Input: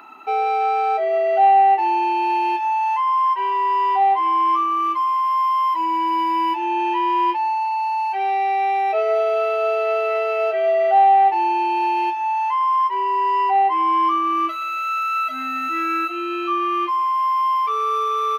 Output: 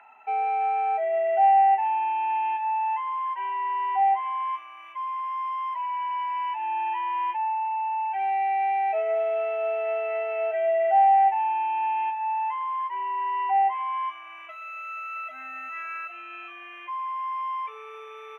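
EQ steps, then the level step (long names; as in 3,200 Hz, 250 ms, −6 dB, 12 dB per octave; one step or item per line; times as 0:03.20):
resonant band-pass 1,200 Hz, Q 0.64
phaser with its sweep stopped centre 1,200 Hz, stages 6
−3.0 dB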